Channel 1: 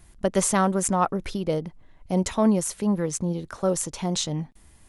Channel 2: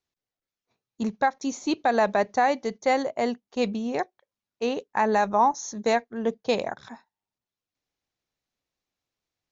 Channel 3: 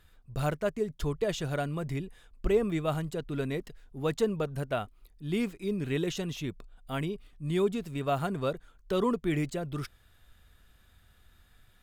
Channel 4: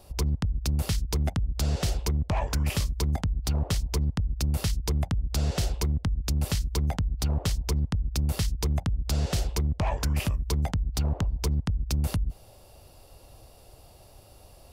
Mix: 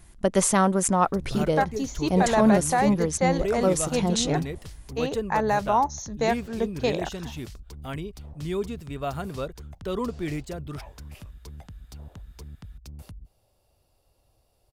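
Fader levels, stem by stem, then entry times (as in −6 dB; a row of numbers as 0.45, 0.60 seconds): +1.0, −1.5, −1.5, −16.0 decibels; 0.00, 0.35, 0.95, 0.95 seconds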